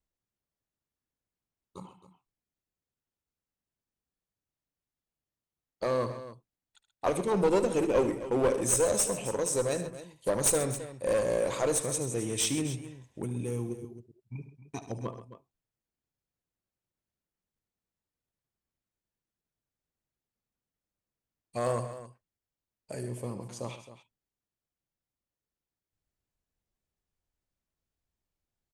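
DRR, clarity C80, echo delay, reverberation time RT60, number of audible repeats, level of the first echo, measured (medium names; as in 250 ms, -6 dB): no reverb, no reverb, 74 ms, no reverb, 3, -13.0 dB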